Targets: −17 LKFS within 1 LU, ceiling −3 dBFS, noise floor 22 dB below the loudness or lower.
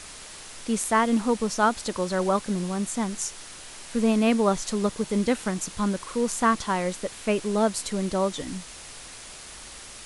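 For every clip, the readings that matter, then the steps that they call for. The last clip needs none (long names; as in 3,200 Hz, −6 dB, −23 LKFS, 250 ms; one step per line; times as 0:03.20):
background noise floor −43 dBFS; target noise floor −48 dBFS; integrated loudness −25.5 LKFS; sample peak −9.0 dBFS; target loudness −17.0 LKFS
→ broadband denoise 6 dB, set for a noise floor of −43 dBFS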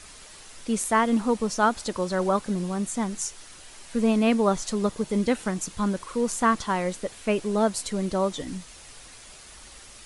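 background noise floor −47 dBFS; target noise floor −48 dBFS
→ broadband denoise 6 dB, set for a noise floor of −47 dBFS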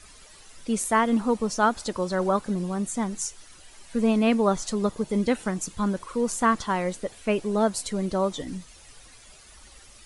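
background noise floor −51 dBFS; integrated loudness −26.0 LKFS; sample peak −9.0 dBFS; target loudness −17.0 LKFS
→ level +9 dB
brickwall limiter −3 dBFS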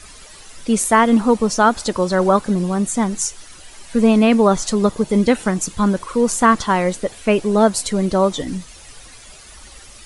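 integrated loudness −17.0 LKFS; sample peak −3.0 dBFS; background noise floor −42 dBFS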